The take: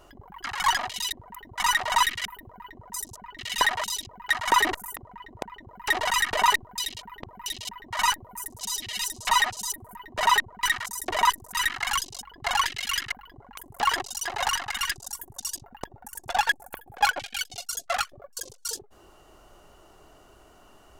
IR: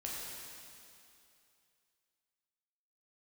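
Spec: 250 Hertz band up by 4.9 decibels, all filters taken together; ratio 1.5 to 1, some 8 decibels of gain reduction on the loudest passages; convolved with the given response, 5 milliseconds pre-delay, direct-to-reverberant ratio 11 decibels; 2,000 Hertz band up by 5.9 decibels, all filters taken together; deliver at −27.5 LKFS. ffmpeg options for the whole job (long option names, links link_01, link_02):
-filter_complex "[0:a]equalizer=frequency=250:width_type=o:gain=6.5,equalizer=frequency=2000:width_type=o:gain=6.5,acompressor=threshold=-36dB:ratio=1.5,asplit=2[link_01][link_02];[1:a]atrim=start_sample=2205,adelay=5[link_03];[link_02][link_03]afir=irnorm=-1:irlink=0,volume=-12dB[link_04];[link_01][link_04]amix=inputs=2:normalize=0,volume=2.5dB"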